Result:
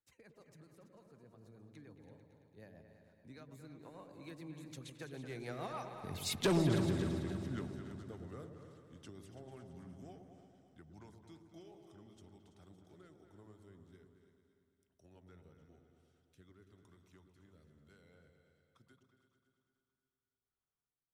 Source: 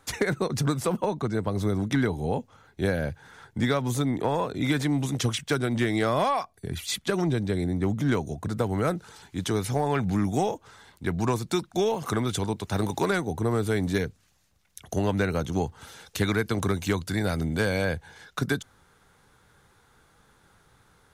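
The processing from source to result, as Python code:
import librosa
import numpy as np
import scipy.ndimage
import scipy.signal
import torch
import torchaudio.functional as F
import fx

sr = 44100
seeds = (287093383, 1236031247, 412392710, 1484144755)

p1 = fx.doppler_pass(x, sr, speed_mps=31, closest_m=2.0, pass_at_s=6.45)
p2 = fx.rotary_switch(p1, sr, hz=6.7, then_hz=1.1, switch_at_s=10.4)
p3 = p2 + fx.echo_feedback(p2, sr, ms=285, feedback_pct=52, wet_db=-14.0, dry=0)
p4 = 10.0 ** (-32.0 / 20.0) * np.tanh(p3 / 10.0 ** (-32.0 / 20.0))
p5 = fx.echo_opening(p4, sr, ms=111, hz=750, octaves=2, feedback_pct=70, wet_db=-6)
y = p5 * librosa.db_to_amplitude(6.0)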